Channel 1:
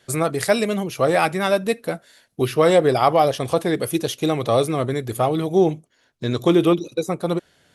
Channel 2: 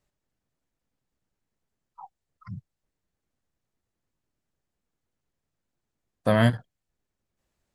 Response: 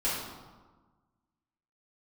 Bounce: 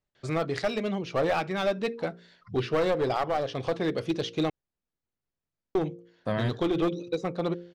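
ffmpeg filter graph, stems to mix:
-filter_complex "[0:a]lowpass=frequency=5100:width=0.5412,lowpass=frequency=5100:width=1.3066,bandreject=frequency=58.06:width_type=h:width=4,bandreject=frequency=116.12:width_type=h:width=4,bandreject=frequency=174.18:width_type=h:width=4,bandreject=frequency=232.24:width_type=h:width=4,bandreject=frequency=290.3:width_type=h:width=4,bandreject=frequency=348.36:width_type=h:width=4,bandreject=frequency=406.42:width_type=h:width=4,bandreject=frequency=464.48:width_type=h:width=4,bandreject=frequency=522.54:width_type=h:width=4,adelay=150,volume=-5.5dB,asplit=3[link_01][link_02][link_03];[link_01]atrim=end=4.5,asetpts=PTS-STARTPTS,afade=type=out:start_time=4.496:duration=0.004:curve=hsin[link_04];[link_02]atrim=start=4.5:end=5.75,asetpts=PTS-STARTPTS,volume=0[link_05];[link_03]atrim=start=5.75,asetpts=PTS-STARTPTS,afade=type=in:duration=0.004:curve=hsin[link_06];[link_04][link_05][link_06]concat=n=3:v=0:a=1[link_07];[1:a]lowpass=5800,volume=-7.5dB[link_08];[link_07][link_08]amix=inputs=2:normalize=0,aeval=exprs='clip(val(0),-1,0.0944)':channel_layout=same,alimiter=limit=-16.5dB:level=0:latency=1:release=327"

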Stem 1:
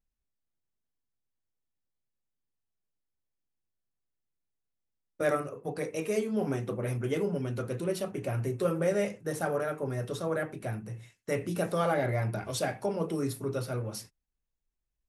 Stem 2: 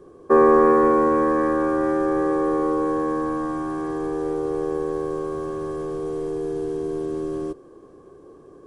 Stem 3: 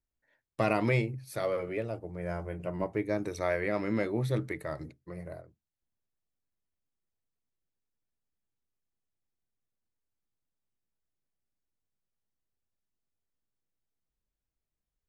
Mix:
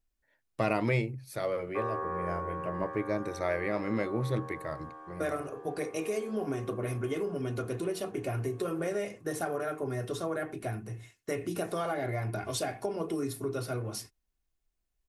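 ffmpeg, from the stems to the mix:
ffmpeg -i stem1.wav -i stem2.wav -i stem3.wav -filter_complex "[0:a]aecho=1:1:2.8:0.45,acompressor=threshold=-30dB:ratio=6,volume=1dB[link_01];[1:a]acrossover=split=510 3100:gain=0.0794 1 0.2[link_02][link_03][link_04];[link_02][link_03][link_04]amix=inputs=3:normalize=0,adelay=1450,volume=-15dB[link_05];[2:a]volume=-1dB[link_06];[link_01][link_05][link_06]amix=inputs=3:normalize=0" out.wav

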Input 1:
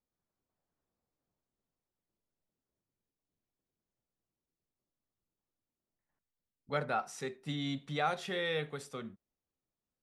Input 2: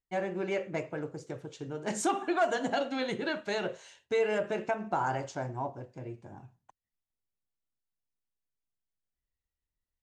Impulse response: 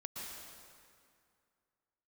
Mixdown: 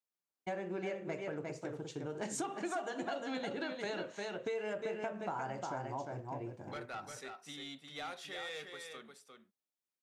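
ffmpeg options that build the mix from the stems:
-filter_complex "[0:a]highpass=250,tiltshelf=frequency=1100:gain=-4,asoftclip=type=tanh:threshold=-30dB,volume=-7dB,asplit=2[link_01][link_02];[link_02]volume=-6dB[link_03];[1:a]highpass=110,agate=range=-33dB:threshold=-50dB:ratio=3:detection=peak,adelay=350,volume=-0.5dB,asplit=2[link_04][link_05];[link_05]volume=-6.5dB[link_06];[link_03][link_06]amix=inputs=2:normalize=0,aecho=0:1:353:1[link_07];[link_01][link_04][link_07]amix=inputs=3:normalize=0,acompressor=threshold=-37dB:ratio=4"

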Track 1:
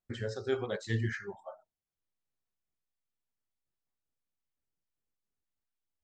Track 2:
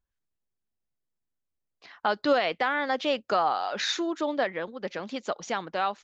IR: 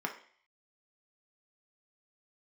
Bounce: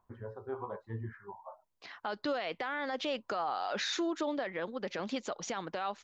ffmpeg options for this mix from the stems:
-filter_complex "[0:a]acompressor=mode=upward:threshold=-53dB:ratio=2.5,lowpass=frequency=1000:width_type=q:width=12,volume=-9dB[link_01];[1:a]acompressor=threshold=-31dB:ratio=2.5,volume=1dB[link_02];[link_01][link_02]amix=inputs=2:normalize=0,equalizer=frequency=99:width=6.7:gain=4,alimiter=level_in=1.5dB:limit=-24dB:level=0:latency=1:release=20,volume=-1.5dB"

